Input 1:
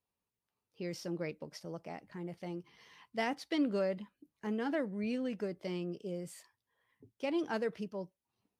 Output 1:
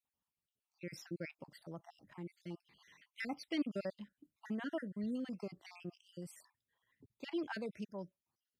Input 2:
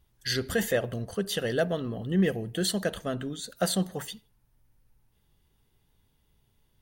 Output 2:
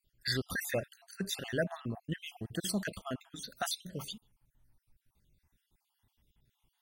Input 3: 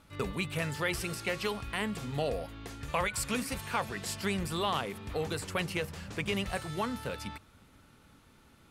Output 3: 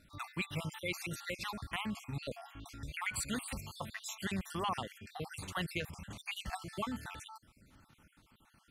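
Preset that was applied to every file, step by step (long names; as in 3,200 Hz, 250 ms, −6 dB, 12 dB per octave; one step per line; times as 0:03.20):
time-frequency cells dropped at random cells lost 50%
parametric band 460 Hz −7 dB 0.58 octaves
level −2 dB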